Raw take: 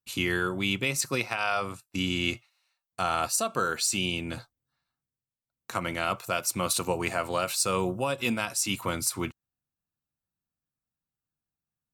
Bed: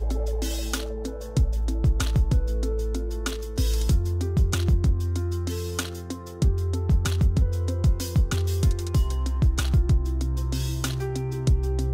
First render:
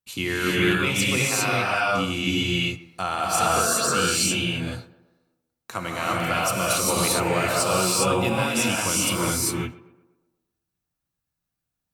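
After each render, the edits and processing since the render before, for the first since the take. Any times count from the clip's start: tape echo 0.123 s, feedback 55%, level -16.5 dB, low-pass 1800 Hz; non-linear reverb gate 0.43 s rising, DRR -5.5 dB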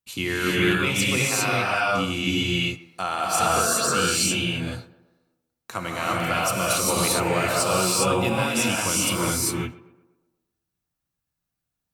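2.74–3.4 low shelf 100 Hz -11.5 dB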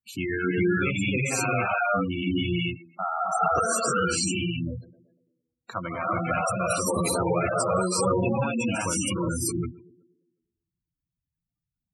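spectral gate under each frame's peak -10 dB strong; dynamic EQ 3400 Hz, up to -5 dB, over -46 dBFS, Q 1.8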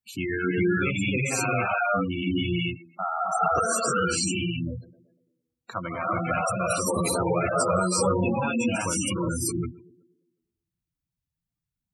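7.53–8.76 doubler 12 ms -3.5 dB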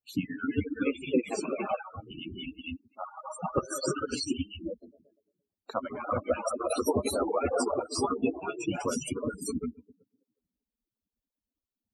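median-filter separation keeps percussive; graphic EQ 250/500/2000/4000/8000 Hz +6/+7/-11/+3/-8 dB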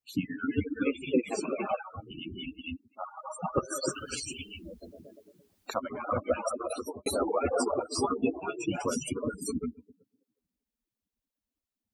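3.89–5.76 spectral compressor 4:1; 6.45–7.06 fade out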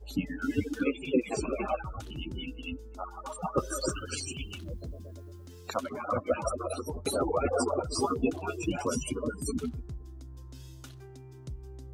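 add bed -20 dB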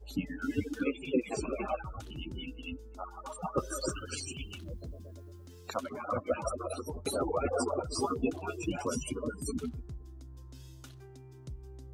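gain -3 dB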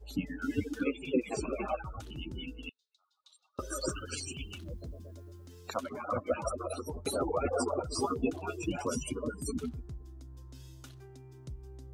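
2.69–3.59 ladder band-pass 4100 Hz, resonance 80%

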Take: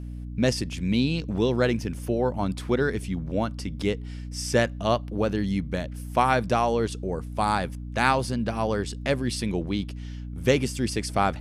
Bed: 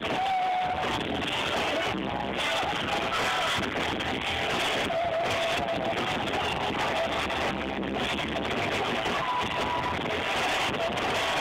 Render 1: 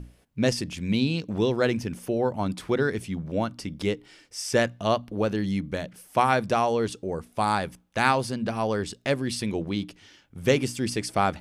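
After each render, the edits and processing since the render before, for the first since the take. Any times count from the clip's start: notches 60/120/180/240/300 Hz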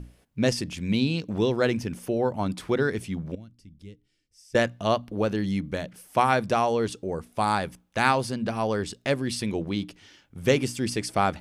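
3.35–4.55 passive tone stack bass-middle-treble 10-0-1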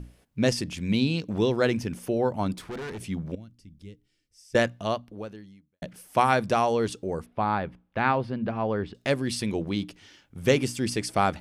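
2.53–3 tube stage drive 33 dB, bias 0.4; 4.65–5.82 fade out quadratic; 7.26–8.95 air absorption 400 m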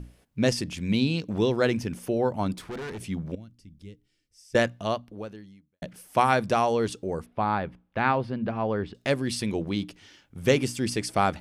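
nothing audible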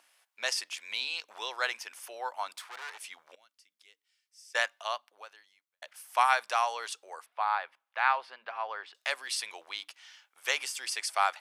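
HPF 850 Hz 24 dB/oct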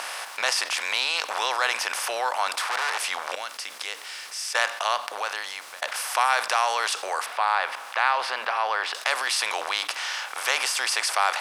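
per-bin compression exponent 0.6; fast leveller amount 50%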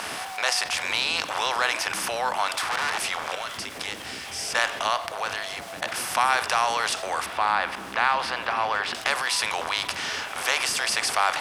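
add bed -11 dB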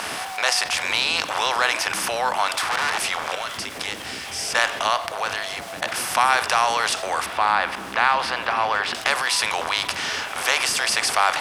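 gain +3.5 dB

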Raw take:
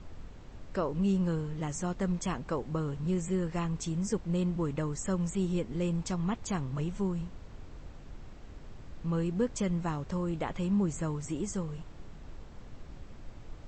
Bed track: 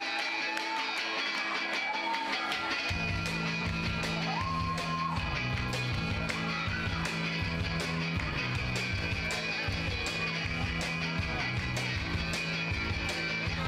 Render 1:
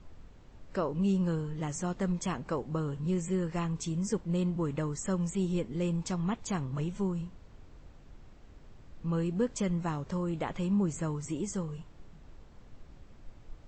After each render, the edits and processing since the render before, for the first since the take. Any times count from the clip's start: noise print and reduce 6 dB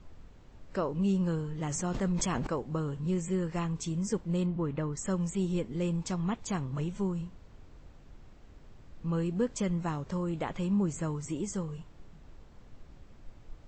1.55–2.47 sustainer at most 21 dB/s; 4.46–4.97 air absorption 170 m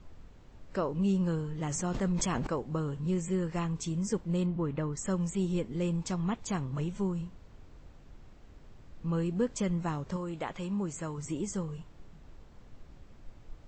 10.16–11.18 low shelf 340 Hz -7 dB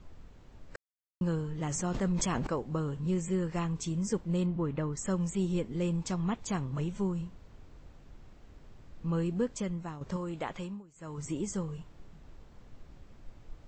0.76–1.21 mute; 9.29–10.01 fade out, to -10 dB; 10.58–11.2 dip -21.5 dB, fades 0.25 s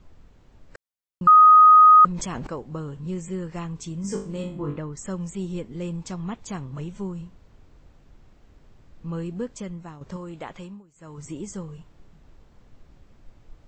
1.27–2.05 bleep 1250 Hz -8 dBFS; 4.02–4.78 flutter echo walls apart 3.5 m, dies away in 0.39 s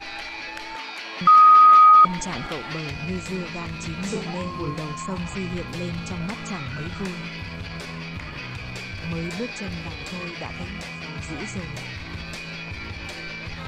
add bed track -1.5 dB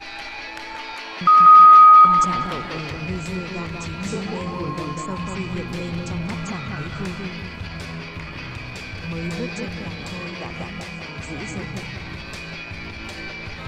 dark delay 0.191 s, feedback 37%, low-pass 2000 Hz, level -3 dB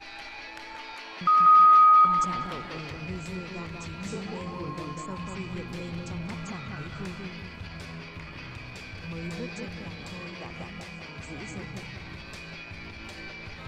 gain -8 dB

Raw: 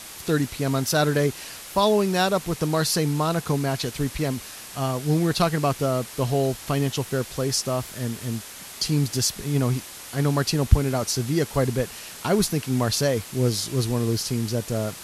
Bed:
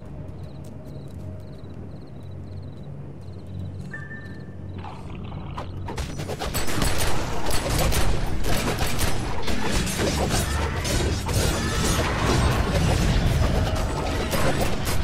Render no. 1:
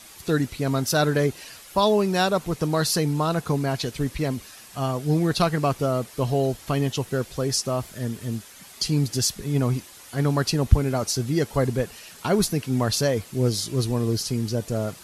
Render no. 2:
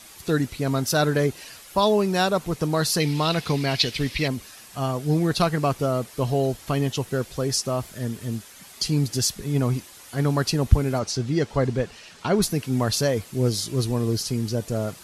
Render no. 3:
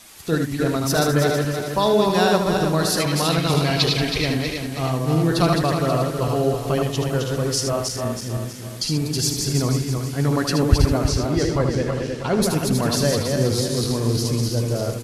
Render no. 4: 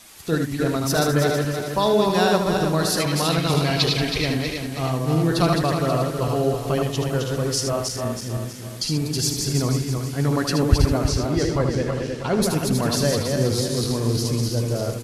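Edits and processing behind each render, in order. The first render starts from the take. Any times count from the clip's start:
denoiser 8 dB, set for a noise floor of -40 dBFS
3–4.28 band shelf 3200 Hz +11 dB; 10.99–12.42 LPF 6000 Hz
regenerating reverse delay 0.161 s, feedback 66%, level -3.5 dB; echo 77 ms -7 dB
gain -1 dB

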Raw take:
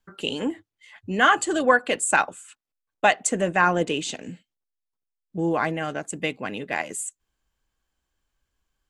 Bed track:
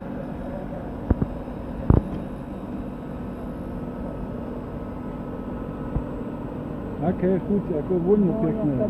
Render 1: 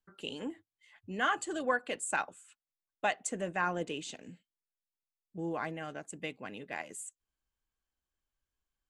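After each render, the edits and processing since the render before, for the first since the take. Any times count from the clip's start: gain -12.5 dB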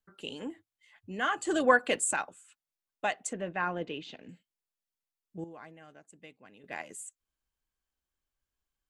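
1.45–2.13 gain +8 dB; 3.33–4.29 LPF 4300 Hz 24 dB/oct; 5.44–6.64 gain -12 dB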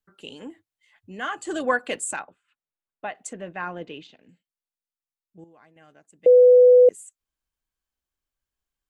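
2.19–3.15 air absorption 370 m; 4.07–5.76 gain -6.5 dB; 6.26–6.89 bleep 497 Hz -9 dBFS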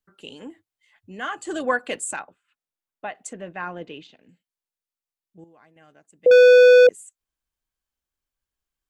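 6.31–6.87 sample leveller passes 3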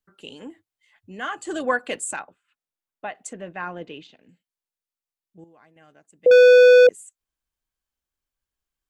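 nothing audible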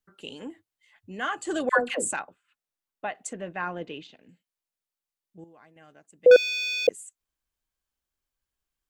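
1.69–2.12 dispersion lows, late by 0.106 s, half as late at 710 Hz; 6.36–6.88 elliptic high-pass 2100 Hz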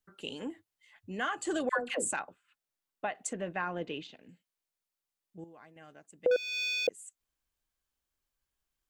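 compressor 3:1, threshold -30 dBFS, peak gain reduction 14 dB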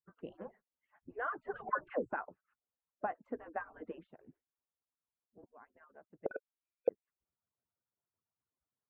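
median-filter separation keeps percussive; LPF 1400 Hz 24 dB/oct

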